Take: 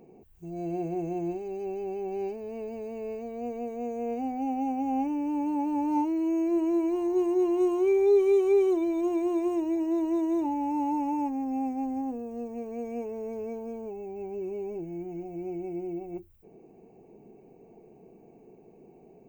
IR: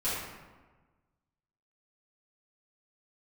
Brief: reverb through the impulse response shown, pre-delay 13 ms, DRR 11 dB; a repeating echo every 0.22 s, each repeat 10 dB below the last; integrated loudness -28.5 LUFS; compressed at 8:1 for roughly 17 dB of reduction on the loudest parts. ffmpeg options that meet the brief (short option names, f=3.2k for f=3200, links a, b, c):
-filter_complex "[0:a]acompressor=threshold=-37dB:ratio=8,aecho=1:1:220|440|660|880:0.316|0.101|0.0324|0.0104,asplit=2[a][b];[1:a]atrim=start_sample=2205,adelay=13[c];[b][c]afir=irnorm=-1:irlink=0,volume=-19dB[d];[a][d]amix=inputs=2:normalize=0,volume=10.5dB"